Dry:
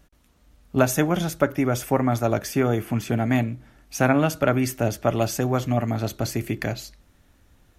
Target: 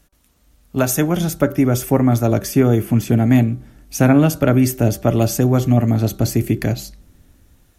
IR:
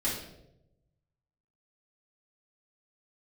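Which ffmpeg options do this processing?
-filter_complex "[0:a]acrossover=split=450|6600[a][b][c];[a]dynaudnorm=f=720:g=3:m=11.5dB[d];[d][b][c]amix=inputs=3:normalize=0,aemphasis=mode=production:type=cd,bandreject=f=192.9:t=h:w=4,bandreject=f=385.8:t=h:w=4,bandreject=f=578.7:t=h:w=4,bandreject=f=771.6:t=h:w=4,bandreject=f=964.5:t=h:w=4,bandreject=f=1.1574k:t=h:w=4,bandreject=f=1.3503k:t=h:w=4,bandreject=f=1.5432k:t=h:w=4"

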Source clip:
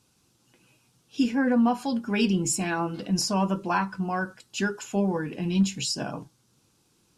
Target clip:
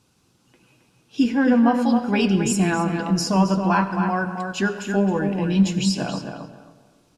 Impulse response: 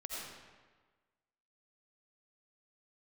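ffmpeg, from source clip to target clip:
-filter_complex "[0:a]highshelf=f=4.6k:g=-6.5,asplit=2[a][b];[b]adelay=269,lowpass=f=3k:p=1,volume=-6dB,asplit=2[c][d];[d]adelay=269,lowpass=f=3k:p=1,volume=0.21,asplit=2[e][f];[f]adelay=269,lowpass=f=3k:p=1,volume=0.21[g];[a][c][e][g]amix=inputs=4:normalize=0,asplit=2[h][i];[1:a]atrim=start_sample=2205,asetrate=41454,aresample=44100[j];[i][j]afir=irnorm=-1:irlink=0,volume=-10.5dB[k];[h][k]amix=inputs=2:normalize=0,volume=3.5dB"

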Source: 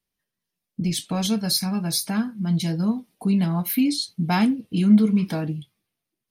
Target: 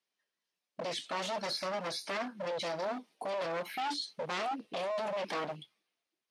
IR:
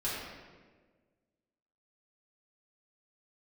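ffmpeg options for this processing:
-filter_complex "[0:a]acrossover=split=2700[a][b];[b]acompressor=threshold=-38dB:ratio=4:attack=1:release=60[c];[a][c]amix=inputs=2:normalize=0,alimiter=limit=-18.5dB:level=0:latency=1:release=13,aeval=exprs='0.0473*(abs(mod(val(0)/0.0473+3,4)-2)-1)':c=same,highpass=440,lowpass=6.4k"

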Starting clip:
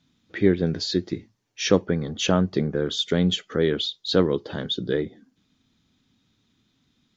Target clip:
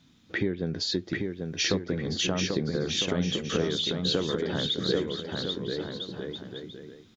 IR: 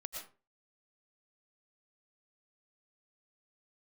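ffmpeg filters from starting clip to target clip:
-filter_complex "[0:a]acompressor=threshold=-33dB:ratio=5,asplit=2[a][b];[b]aecho=0:1:790|1304|1637|1854|1995:0.631|0.398|0.251|0.158|0.1[c];[a][c]amix=inputs=2:normalize=0,volume=6dB"

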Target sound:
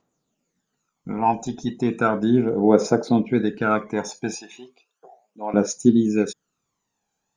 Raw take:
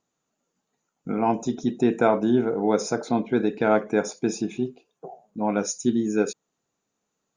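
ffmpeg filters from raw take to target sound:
-filter_complex "[0:a]asettb=1/sr,asplit=3[a][b][c];[a]atrim=end=4.354[d];[b]atrim=start=4.35:end=5.54,asetpts=PTS-STARTPTS,afade=t=in:d=0.004:c=qsin,afade=t=out:st=1.186:d=0.004:c=qsin,highpass=680[e];[c]atrim=start=5.536[f];[d][e]acrossfade=d=0.004:c1=hsin:c2=qsin[g];[g][f]acrossfade=d=0.004:c1=qsin:c2=hsin,aphaser=in_gain=1:out_gain=1:delay=1.3:decay=0.62:speed=0.35:type=triangular"

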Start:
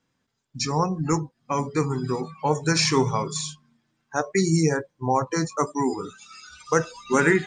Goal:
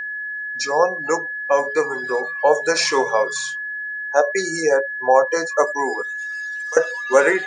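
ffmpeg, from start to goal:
-filter_complex "[0:a]highpass=f=550:t=q:w=4.9,asettb=1/sr,asplit=3[a][b][c];[a]atrim=end=6.024[d];[b]atrim=start=6.02:end=6.77,asetpts=PTS-STARTPTS,afade=t=in:d=0.004:c=qsin,afade=t=out:st=0.746:d=0.004:c=qsin,aderivative[e];[c]atrim=start=6.766[f];[d][e]acrossfade=d=0.004:c1=hsin:c2=qsin[g];[g][f]acrossfade=d=0.004:c1=qsin:c2=hsin,aeval=exprs='val(0)+0.0447*sin(2*PI*1700*n/s)':c=same,volume=1.5dB"

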